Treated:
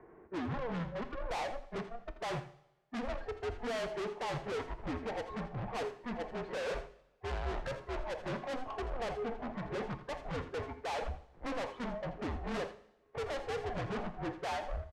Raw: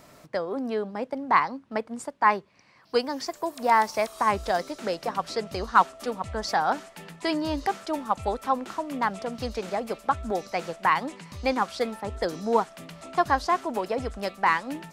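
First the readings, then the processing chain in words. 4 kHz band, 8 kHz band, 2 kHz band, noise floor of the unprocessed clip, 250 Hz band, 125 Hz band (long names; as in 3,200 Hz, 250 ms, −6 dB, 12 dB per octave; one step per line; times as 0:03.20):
−10.5 dB, −12.5 dB, −13.0 dB, −56 dBFS, −9.5 dB, −1.5 dB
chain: each half-wave held at its own peak
noise gate −34 dBFS, range −26 dB
noise reduction from a noise print of the clip's start 17 dB
parametric band 700 Hz +7 dB 0.8 octaves
upward compression, threshold −25 dBFS
single-sideband voice off tune −250 Hz 290–2,300 Hz
soft clipping −37 dBFS, distortion 1 dB
high-frequency loss of the air 64 metres
single-tap delay 83 ms −12.5 dB
coupled-rooms reverb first 0.85 s, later 3.1 s, from −18 dB, DRR 11 dB
multiband upward and downward expander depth 40%
level +1.5 dB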